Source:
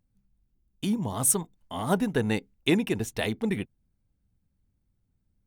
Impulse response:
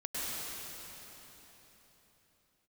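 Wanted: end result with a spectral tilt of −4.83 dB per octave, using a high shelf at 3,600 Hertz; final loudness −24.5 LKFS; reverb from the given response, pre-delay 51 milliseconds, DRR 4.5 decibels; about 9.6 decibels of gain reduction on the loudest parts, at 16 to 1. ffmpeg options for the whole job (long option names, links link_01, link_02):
-filter_complex "[0:a]highshelf=frequency=3600:gain=-5.5,acompressor=threshold=-28dB:ratio=16,asplit=2[link_01][link_02];[1:a]atrim=start_sample=2205,adelay=51[link_03];[link_02][link_03]afir=irnorm=-1:irlink=0,volume=-9.5dB[link_04];[link_01][link_04]amix=inputs=2:normalize=0,volume=9.5dB"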